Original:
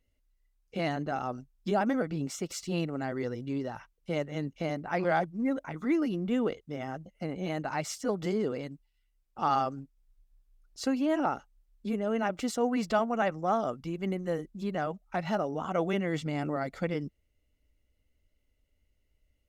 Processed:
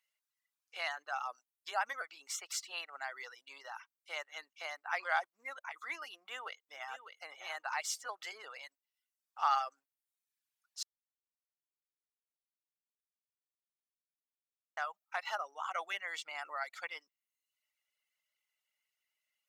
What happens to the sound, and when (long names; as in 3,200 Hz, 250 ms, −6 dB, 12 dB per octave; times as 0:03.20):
0:06.17–0:07.09: delay throw 600 ms, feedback 15%, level −8.5 dB
0:10.83–0:14.77: silence
whole clip: high-pass filter 930 Hz 24 dB per octave; reverb reduction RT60 0.75 s; level +1 dB